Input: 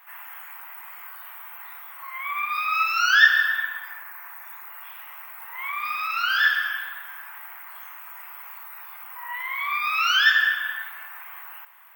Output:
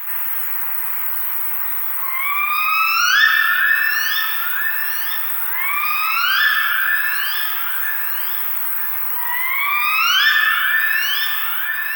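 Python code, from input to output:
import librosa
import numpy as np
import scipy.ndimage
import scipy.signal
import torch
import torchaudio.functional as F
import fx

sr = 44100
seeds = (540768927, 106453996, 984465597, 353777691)

p1 = fx.highpass(x, sr, hz=670.0, slope=6)
p2 = fx.high_shelf(p1, sr, hz=7600.0, db=12.0)
p3 = p2 + fx.echo_alternate(p2, sr, ms=476, hz=2200.0, feedback_pct=54, wet_db=-4, dry=0)
y = fx.env_flatten(p3, sr, amount_pct=50)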